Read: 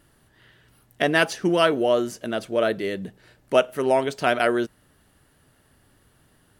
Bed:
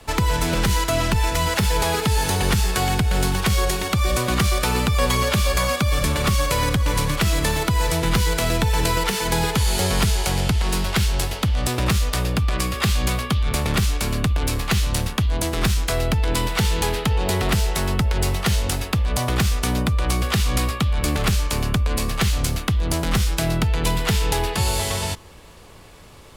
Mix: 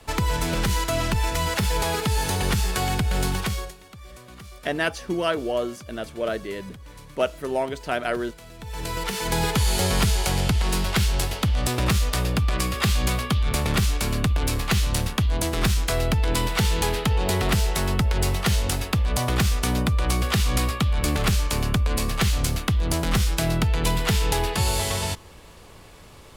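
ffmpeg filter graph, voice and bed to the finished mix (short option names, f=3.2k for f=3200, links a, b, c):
-filter_complex "[0:a]adelay=3650,volume=-5dB[a];[1:a]volume=18.5dB,afade=t=out:st=3.35:d=0.39:silence=0.1,afade=t=in:st=8.57:d=0.92:silence=0.0794328[b];[a][b]amix=inputs=2:normalize=0"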